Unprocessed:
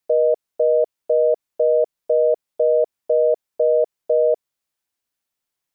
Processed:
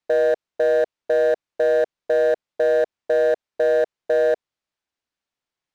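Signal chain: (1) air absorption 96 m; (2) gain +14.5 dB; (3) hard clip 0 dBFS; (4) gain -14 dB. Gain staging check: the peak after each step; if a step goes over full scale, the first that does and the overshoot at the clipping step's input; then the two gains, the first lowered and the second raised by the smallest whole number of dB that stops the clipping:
-10.0, +4.5, 0.0, -14.0 dBFS; step 2, 4.5 dB; step 2 +9.5 dB, step 4 -9 dB

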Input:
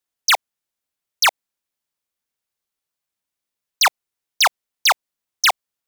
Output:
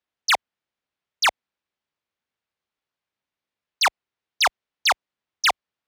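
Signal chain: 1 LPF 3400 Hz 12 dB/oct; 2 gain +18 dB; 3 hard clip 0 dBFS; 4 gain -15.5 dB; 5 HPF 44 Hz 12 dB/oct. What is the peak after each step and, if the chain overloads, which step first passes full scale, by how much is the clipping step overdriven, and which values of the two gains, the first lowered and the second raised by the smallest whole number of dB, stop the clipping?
-11.5, +6.5, 0.0, -15.5, -14.5 dBFS; step 2, 6.5 dB; step 2 +11 dB, step 4 -8.5 dB

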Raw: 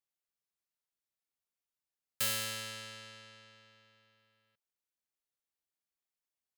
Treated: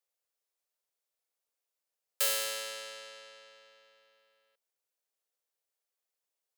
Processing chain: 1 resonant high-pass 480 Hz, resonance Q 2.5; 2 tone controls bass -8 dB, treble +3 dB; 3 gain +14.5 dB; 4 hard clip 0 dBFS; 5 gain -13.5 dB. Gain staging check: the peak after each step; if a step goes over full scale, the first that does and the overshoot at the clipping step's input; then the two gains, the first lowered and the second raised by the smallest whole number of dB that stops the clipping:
-21.5, -19.0, -4.5, -4.5, -18.0 dBFS; no overload

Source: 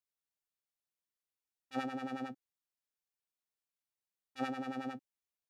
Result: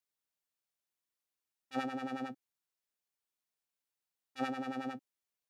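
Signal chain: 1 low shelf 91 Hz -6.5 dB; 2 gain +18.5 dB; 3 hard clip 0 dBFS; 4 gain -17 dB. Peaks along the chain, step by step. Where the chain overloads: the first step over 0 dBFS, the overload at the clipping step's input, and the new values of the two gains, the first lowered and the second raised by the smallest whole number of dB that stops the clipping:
-23.5, -5.0, -5.0, -22.0 dBFS; no overload

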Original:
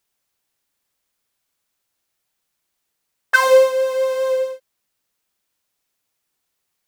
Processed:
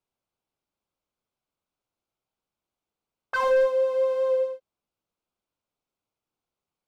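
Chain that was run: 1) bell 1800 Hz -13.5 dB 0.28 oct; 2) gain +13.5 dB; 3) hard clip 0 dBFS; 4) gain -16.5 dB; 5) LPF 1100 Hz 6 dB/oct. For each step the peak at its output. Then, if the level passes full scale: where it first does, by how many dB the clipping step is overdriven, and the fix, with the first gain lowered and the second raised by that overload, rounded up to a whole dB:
-4.0, +9.5, 0.0, -16.5, -16.5 dBFS; step 2, 9.5 dB; step 2 +3.5 dB, step 4 -6.5 dB

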